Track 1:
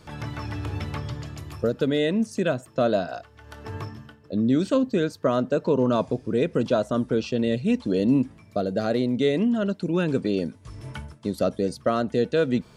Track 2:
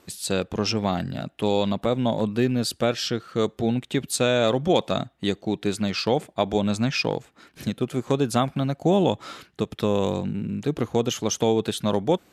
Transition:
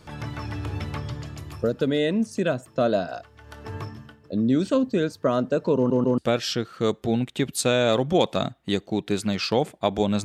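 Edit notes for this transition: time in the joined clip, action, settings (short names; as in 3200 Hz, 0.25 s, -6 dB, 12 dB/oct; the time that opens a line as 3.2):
track 1
5.76 stutter in place 0.14 s, 3 plays
6.18 switch to track 2 from 2.73 s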